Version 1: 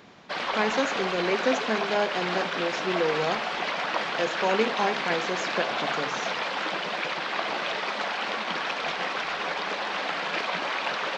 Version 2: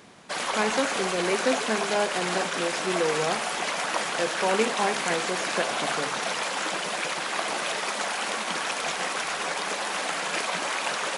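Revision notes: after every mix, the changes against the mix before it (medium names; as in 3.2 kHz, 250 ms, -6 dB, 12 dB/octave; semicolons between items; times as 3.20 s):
background: remove low-pass 4.5 kHz 24 dB/octave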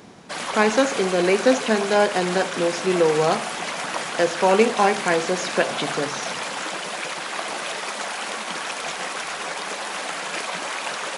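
speech +8.0 dB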